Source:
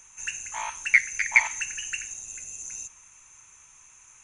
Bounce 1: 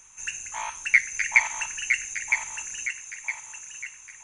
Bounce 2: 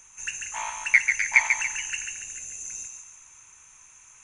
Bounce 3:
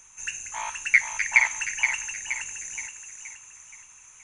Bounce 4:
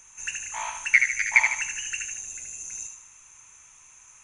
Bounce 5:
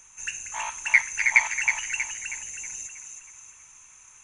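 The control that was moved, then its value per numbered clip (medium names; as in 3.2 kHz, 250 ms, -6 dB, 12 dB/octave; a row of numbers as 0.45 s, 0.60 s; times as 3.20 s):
thinning echo, time: 962 ms, 142 ms, 473 ms, 76 ms, 319 ms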